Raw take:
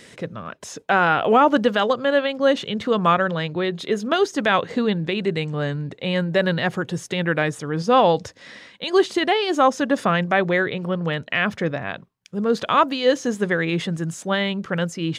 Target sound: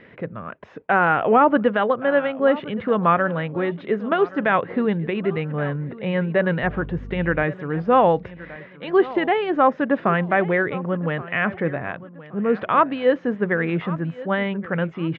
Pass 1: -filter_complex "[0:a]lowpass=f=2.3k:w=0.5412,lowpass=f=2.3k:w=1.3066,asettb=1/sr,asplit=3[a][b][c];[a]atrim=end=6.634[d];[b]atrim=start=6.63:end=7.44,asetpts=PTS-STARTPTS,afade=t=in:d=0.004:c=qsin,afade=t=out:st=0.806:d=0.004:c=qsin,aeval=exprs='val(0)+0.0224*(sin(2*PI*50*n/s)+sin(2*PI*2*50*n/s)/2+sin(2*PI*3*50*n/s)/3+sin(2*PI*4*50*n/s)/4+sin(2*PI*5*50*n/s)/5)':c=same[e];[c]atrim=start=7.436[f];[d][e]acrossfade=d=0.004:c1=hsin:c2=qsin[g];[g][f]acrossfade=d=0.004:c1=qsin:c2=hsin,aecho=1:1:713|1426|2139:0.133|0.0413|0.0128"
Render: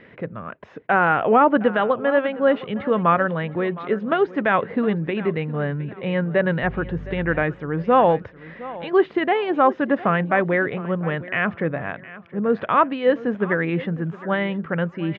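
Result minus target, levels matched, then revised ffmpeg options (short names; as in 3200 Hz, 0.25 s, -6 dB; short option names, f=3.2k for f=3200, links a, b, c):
echo 0.41 s early
-filter_complex "[0:a]lowpass=f=2.3k:w=0.5412,lowpass=f=2.3k:w=1.3066,asettb=1/sr,asplit=3[a][b][c];[a]atrim=end=6.634[d];[b]atrim=start=6.63:end=7.44,asetpts=PTS-STARTPTS,afade=t=in:d=0.004:c=qsin,afade=t=out:st=0.806:d=0.004:c=qsin,aeval=exprs='val(0)+0.0224*(sin(2*PI*50*n/s)+sin(2*PI*2*50*n/s)/2+sin(2*PI*3*50*n/s)/3+sin(2*PI*4*50*n/s)/4+sin(2*PI*5*50*n/s)/5)':c=same[e];[c]atrim=start=7.436[f];[d][e]acrossfade=d=0.004:c1=hsin:c2=qsin[g];[g][f]acrossfade=d=0.004:c1=qsin:c2=hsin,aecho=1:1:1123|2246|3369:0.133|0.0413|0.0128"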